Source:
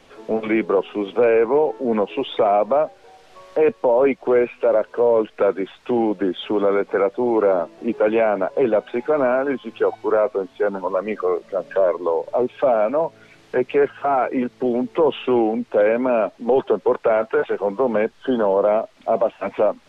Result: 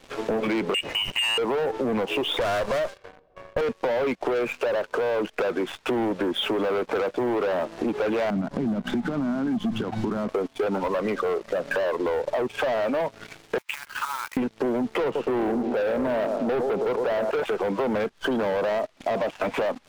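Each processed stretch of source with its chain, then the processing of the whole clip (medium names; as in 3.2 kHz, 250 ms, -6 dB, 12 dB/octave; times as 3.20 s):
0.74–1.38 s: high-pass 840 Hz 6 dB/octave + frequency inversion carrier 3.3 kHz
2.39–3.61 s: comb filter that takes the minimum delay 1.8 ms + treble shelf 3.3 kHz +11 dB + level-controlled noise filter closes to 510 Hz, open at -15 dBFS
8.30–10.29 s: band-stop 2.5 kHz, Q 5.3 + compression 12:1, threshold -30 dBFS + resonant low shelf 320 Hz +13.5 dB, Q 3
13.58–14.37 s: short-mantissa float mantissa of 2-bit + compression 16:1, threshold -29 dBFS + brick-wall FIR high-pass 840 Hz
15.04–17.31 s: low-pass 1.1 kHz + feedback delay 113 ms, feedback 47%, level -11.5 dB
whole clip: waveshaping leveller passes 3; peak limiter -13.5 dBFS; compression 10:1, threshold -23 dBFS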